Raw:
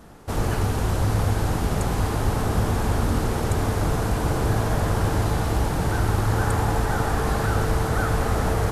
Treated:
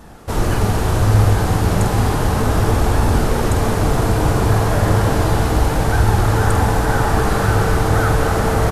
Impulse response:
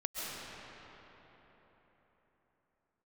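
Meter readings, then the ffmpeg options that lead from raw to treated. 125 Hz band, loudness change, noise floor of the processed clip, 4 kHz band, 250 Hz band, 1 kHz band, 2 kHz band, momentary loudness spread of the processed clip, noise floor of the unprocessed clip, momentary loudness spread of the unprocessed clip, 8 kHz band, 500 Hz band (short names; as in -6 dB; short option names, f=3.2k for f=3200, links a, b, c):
+7.0 dB, +7.0 dB, -19 dBFS, +6.5 dB, +6.5 dB, +7.0 dB, +7.0 dB, 2 LU, -26 dBFS, 2 LU, +6.5 dB, +7.5 dB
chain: -filter_complex "[0:a]flanger=delay=1.1:depth=9.6:regen=72:speed=0.33:shape=sinusoidal,asplit=2[a][b];[b]adelay=48,volume=-8dB[c];[a][c]amix=inputs=2:normalize=0,asplit=2[d][e];[1:a]atrim=start_sample=2205[f];[e][f]afir=irnorm=-1:irlink=0,volume=-7.5dB[g];[d][g]amix=inputs=2:normalize=0,volume=7.5dB"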